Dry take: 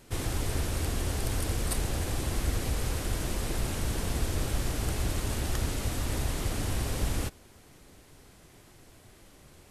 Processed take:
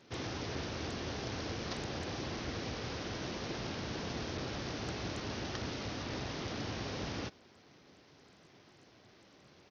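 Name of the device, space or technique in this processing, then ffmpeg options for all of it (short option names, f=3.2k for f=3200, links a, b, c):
Bluetooth headset: -af "highpass=140,aresample=16000,aresample=44100,volume=-3.5dB" -ar 48000 -c:a sbc -b:a 64k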